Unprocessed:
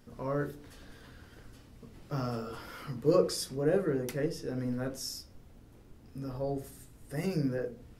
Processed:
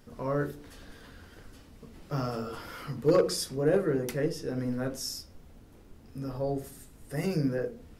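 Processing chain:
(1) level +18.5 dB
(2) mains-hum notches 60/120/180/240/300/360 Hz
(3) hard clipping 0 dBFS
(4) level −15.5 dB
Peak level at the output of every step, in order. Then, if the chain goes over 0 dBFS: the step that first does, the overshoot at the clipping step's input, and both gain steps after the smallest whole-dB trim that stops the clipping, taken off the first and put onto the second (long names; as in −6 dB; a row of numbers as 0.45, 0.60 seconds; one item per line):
+5.5, +5.0, 0.0, −15.5 dBFS
step 1, 5.0 dB
step 1 +13.5 dB, step 4 −10.5 dB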